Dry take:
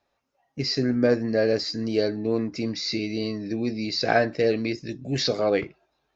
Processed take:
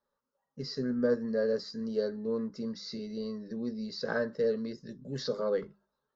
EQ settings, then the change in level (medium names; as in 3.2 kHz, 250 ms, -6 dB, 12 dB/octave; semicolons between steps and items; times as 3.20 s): treble shelf 5.2 kHz -11.5 dB; hum notches 50/100/150/200 Hz; static phaser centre 480 Hz, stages 8; -5.5 dB